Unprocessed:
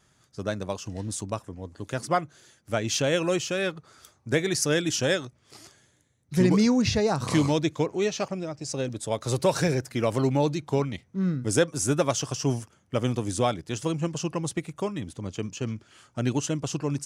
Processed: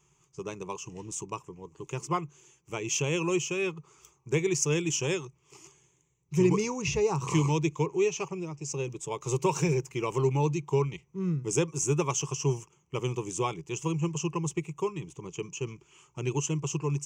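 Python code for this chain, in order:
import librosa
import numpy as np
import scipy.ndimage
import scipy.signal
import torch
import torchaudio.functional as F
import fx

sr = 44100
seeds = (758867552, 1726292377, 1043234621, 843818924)

y = fx.ripple_eq(x, sr, per_octave=0.73, db=17)
y = y * librosa.db_to_amplitude(-7.0)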